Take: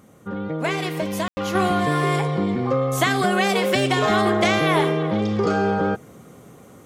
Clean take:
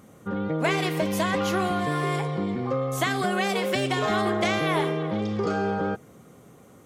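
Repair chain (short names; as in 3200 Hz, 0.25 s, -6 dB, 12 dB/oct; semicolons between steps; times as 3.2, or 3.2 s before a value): room tone fill 1.28–1.37; gain 0 dB, from 1.55 s -5.5 dB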